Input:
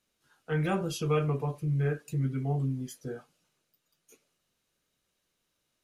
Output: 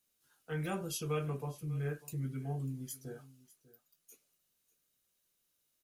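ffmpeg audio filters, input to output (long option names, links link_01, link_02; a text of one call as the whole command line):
ffmpeg -i in.wav -af "aemphasis=mode=production:type=50fm,aecho=1:1:596:0.106,volume=-8dB" out.wav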